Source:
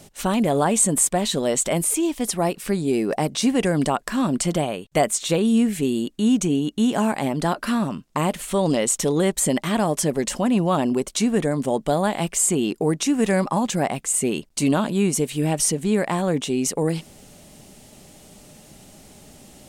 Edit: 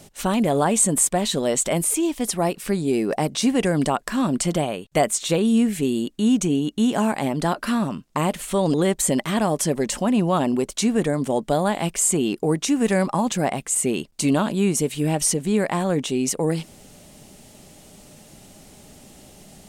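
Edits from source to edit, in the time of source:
8.74–9.12 cut

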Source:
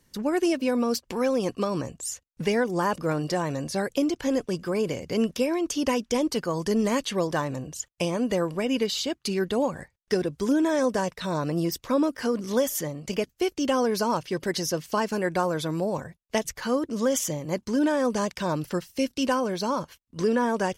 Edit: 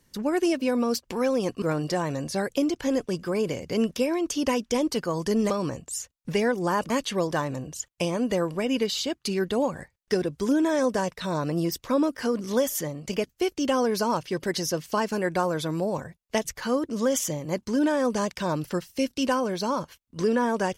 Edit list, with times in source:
1.62–3.02 move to 6.9

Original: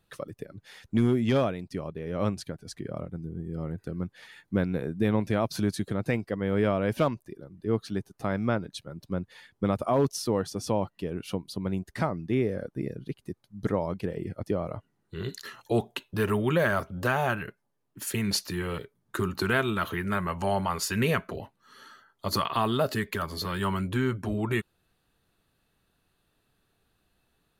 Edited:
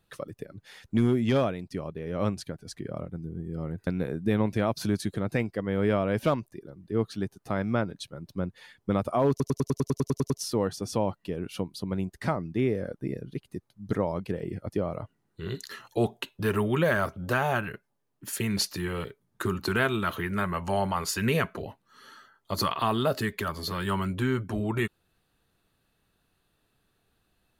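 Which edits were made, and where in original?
3.87–4.61 cut
10.04 stutter 0.10 s, 11 plays

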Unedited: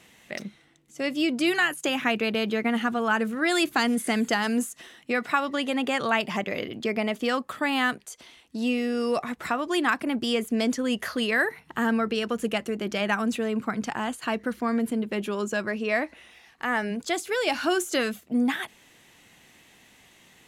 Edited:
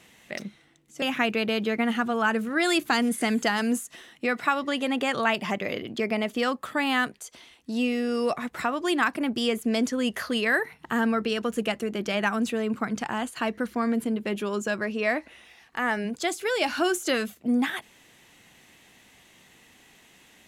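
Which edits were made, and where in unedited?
1.02–1.88 cut

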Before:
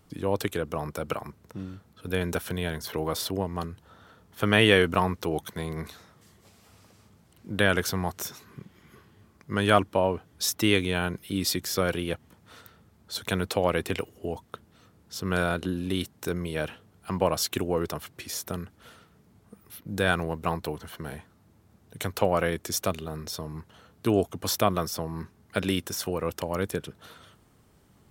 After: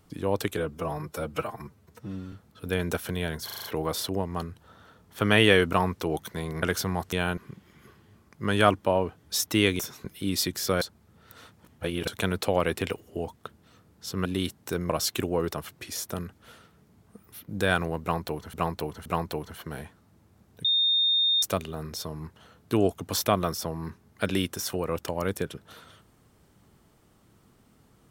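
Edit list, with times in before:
0.57–1.74 stretch 1.5×
2.86 stutter 0.04 s, 6 plays
5.84–7.71 cut
8.21–8.46 swap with 10.88–11.13
11.9–13.16 reverse
15.34–15.81 cut
16.45–17.27 cut
20.39–20.91 loop, 3 plays
21.98–22.76 bleep 3660 Hz -20 dBFS

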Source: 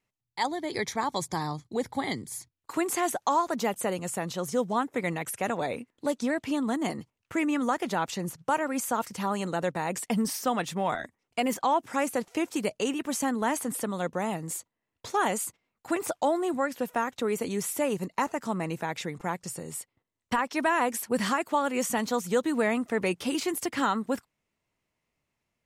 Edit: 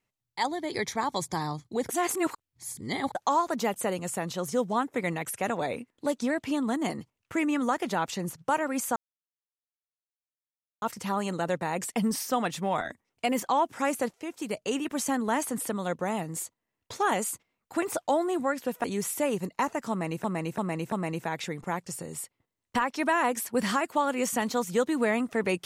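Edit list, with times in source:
1.89–3.15 reverse
8.96 insert silence 1.86 s
12.27–12.95 fade in, from -12.5 dB
16.98–17.43 cut
18.49–18.83 loop, 4 plays

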